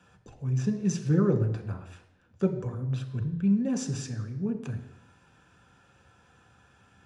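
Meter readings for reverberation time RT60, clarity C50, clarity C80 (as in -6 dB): 0.85 s, 10.0 dB, 12.0 dB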